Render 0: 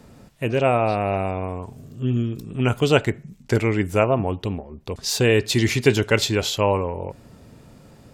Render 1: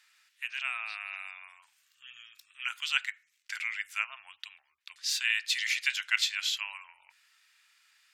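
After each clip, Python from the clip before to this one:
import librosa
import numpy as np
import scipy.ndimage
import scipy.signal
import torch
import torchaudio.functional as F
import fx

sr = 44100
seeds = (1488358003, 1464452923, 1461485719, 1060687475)

y = scipy.signal.sosfilt(scipy.signal.cheby2(4, 60, 520.0, 'highpass', fs=sr, output='sos'), x)
y = fx.high_shelf(y, sr, hz=4900.0, db=-11.0)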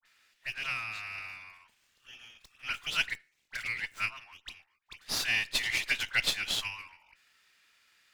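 y = fx.dispersion(x, sr, late='highs', ms=59.0, hz=1600.0)
y = fx.running_max(y, sr, window=3)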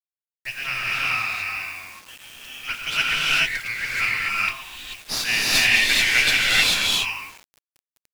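y = fx.rev_gated(x, sr, seeds[0], gate_ms=460, shape='rising', drr_db=-6.5)
y = fx.quant_dither(y, sr, seeds[1], bits=8, dither='none')
y = y * librosa.db_to_amplitude(5.5)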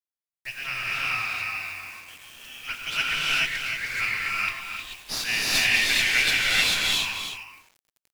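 y = x + 10.0 ** (-8.5 / 20.0) * np.pad(x, (int(311 * sr / 1000.0), 0))[:len(x)]
y = y * librosa.db_to_amplitude(-4.0)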